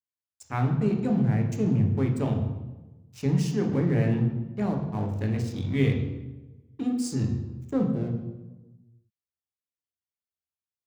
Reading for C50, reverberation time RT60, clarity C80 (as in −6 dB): 6.0 dB, 1.1 s, 8.5 dB